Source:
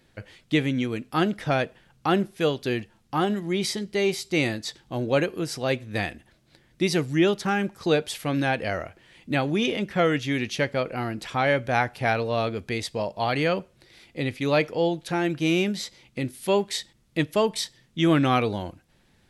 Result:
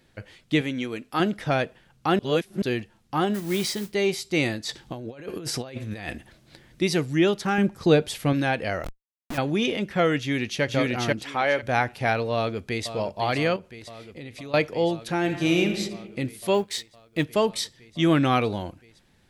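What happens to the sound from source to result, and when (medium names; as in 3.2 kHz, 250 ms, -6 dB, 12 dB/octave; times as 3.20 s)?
0.61–1.20 s: peaking EQ 100 Hz -9 dB 2.4 oct
2.19–2.62 s: reverse
3.34–3.94 s: modulation noise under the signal 14 dB
4.69–6.82 s: compressor with a negative ratio -35 dBFS
7.58–8.33 s: bass shelf 390 Hz +8 dB
8.84–9.38 s: Schmitt trigger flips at -33 dBFS
10.19–10.63 s: echo throw 490 ms, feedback 25%, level 0 dB
11.23–11.63 s: tone controls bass -13 dB, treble -2 dB
12.34–12.92 s: echo throw 510 ms, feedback 85%, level -11.5 dB
13.56–14.54 s: compression, threshold -36 dBFS
15.18–15.75 s: reverb throw, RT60 1.2 s, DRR 5 dB
16.54–17.25 s: companding laws mixed up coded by A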